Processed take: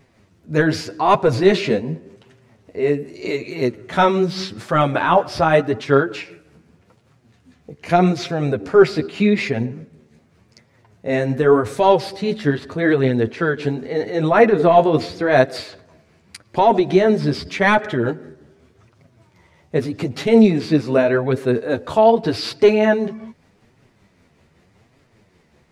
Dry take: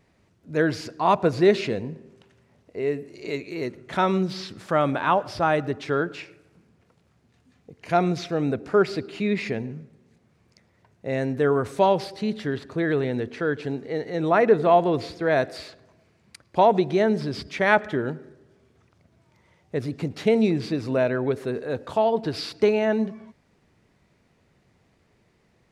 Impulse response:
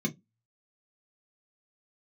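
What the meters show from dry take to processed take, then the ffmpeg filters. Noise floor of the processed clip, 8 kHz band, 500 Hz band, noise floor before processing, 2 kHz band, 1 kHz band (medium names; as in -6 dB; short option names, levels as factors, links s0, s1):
-58 dBFS, no reading, +6.5 dB, -64 dBFS, +6.0 dB, +5.5 dB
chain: -af "apsyclip=4.47,flanger=delay=7.1:depth=6.9:regen=10:speed=0.84:shape=triangular,tremolo=f=5.2:d=0.37,volume=0.891"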